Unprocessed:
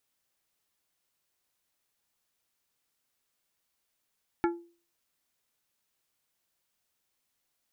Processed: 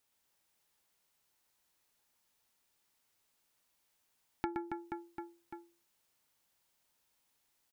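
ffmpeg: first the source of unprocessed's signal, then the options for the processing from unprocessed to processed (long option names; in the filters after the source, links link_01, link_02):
-f lavfi -i "aevalsrc='0.0841*pow(10,-3*t/0.39)*sin(2*PI*342*t)+0.0531*pow(10,-3*t/0.205)*sin(2*PI*855*t)+0.0335*pow(10,-3*t/0.148)*sin(2*PI*1368*t)+0.0211*pow(10,-3*t/0.126)*sin(2*PI*1710*t)+0.0133*pow(10,-3*t/0.105)*sin(2*PI*2223*t)':duration=0.89:sample_rate=44100"
-filter_complex "[0:a]equalizer=frequency=890:width_type=o:width=0.21:gain=5,asplit=2[link_01][link_02];[link_02]aecho=0:1:120|276|478.8|742.4|1085:0.631|0.398|0.251|0.158|0.1[link_03];[link_01][link_03]amix=inputs=2:normalize=0,acompressor=threshold=-36dB:ratio=3"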